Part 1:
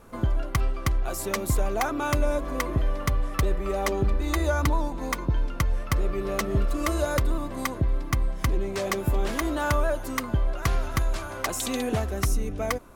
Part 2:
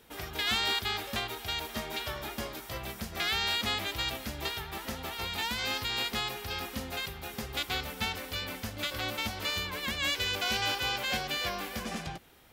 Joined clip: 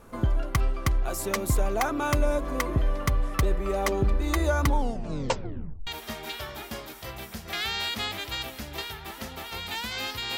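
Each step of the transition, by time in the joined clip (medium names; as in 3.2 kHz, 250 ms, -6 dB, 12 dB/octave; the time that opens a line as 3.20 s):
part 1
4.65 s: tape stop 1.22 s
5.87 s: go over to part 2 from 1.54 s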